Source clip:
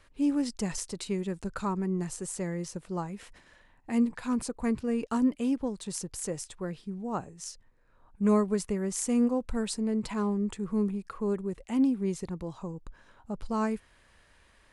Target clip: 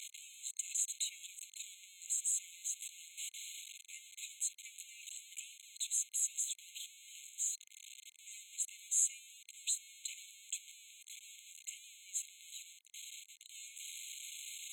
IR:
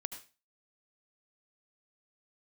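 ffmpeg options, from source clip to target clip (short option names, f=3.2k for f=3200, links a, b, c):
-af "aeval=exprs='val(0)+0.5*0.0224*sgn(val(0))':c=same,bandpass=f=6.9k:t=q:w=1.3:csg=0,afftfilt=real='re*eq(mod(floor(b*sr/1024/2100),2),1)':imag='im*eq(mod(floor(b*sr/1024/2100),2),1)':win_size=1024:overlap=0.75,volume=3dB"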